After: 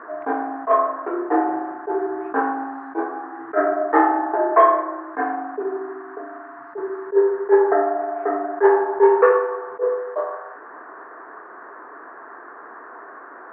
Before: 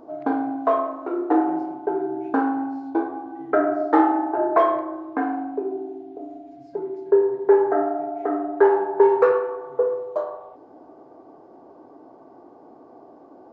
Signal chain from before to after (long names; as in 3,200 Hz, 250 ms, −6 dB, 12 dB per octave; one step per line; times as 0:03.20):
noise in a band 860–1,600 Hz −47 dBFS
loudspeaker in its box 270–2,900 Hz, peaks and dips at 280 Hz −3 dB, 430 Hz +6 dB, 700 Hz +3 dB, 1,100 Hz +7 dB, 1,800 Hz +10 dB
level that may rise only so fast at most 340 dB per second